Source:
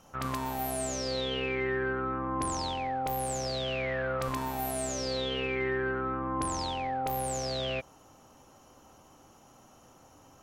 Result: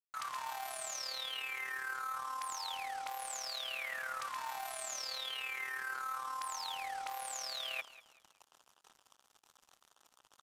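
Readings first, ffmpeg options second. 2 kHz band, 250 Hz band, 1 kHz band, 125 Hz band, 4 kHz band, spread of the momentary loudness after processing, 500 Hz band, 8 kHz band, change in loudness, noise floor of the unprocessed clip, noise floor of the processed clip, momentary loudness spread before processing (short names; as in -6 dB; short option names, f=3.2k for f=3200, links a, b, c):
-4.0 dB, under -30 dB, -7.0 dB, under -35 dB, -3.5 dB, 3 LU, -21.0 dB, -4.5 dB, -7.5 dB, -58 dBFS, -75 dBFS, 3 LU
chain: -filter_complex "[0:a]highpass=f=890:w=0.5412,highpass=f=890:w=1.3066,acrossover=split=8800[a][b];[b]acompressor=threshold=-55dB:ratio=4:attack=1:release=60[c];[a][c]amix=inputs=2:normalize=0,afftfilt=real='re*gte(hypot(re,im),0.00126)':imag='im*gte(hypot(re,im),0.00126)':win_size=1024:overlap=0.75,areverse,acompressor=threshold=-48dB:ratio=4,areverse,acrusher=bits=8:mix=0:aa=0.5,tremolo=f=37:d=0.519,asplit=2[d][e];[e]aecho=0:1:192|384|576:0.133|0.04|0.012[f];[d][f]amix=inputs=2:normalize=0,aresample=32000,aresample=44100,volume=9.5dB"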